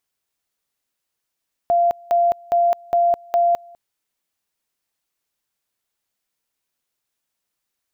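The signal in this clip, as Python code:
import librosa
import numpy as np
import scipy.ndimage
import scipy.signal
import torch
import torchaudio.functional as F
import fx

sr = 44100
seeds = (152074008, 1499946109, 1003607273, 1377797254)

y = fx.two_level_tone(sr, hz=691.0, level_db=-13.0, drop_db=27.0, high_s=0.21, low_s=0.2, rounds=5)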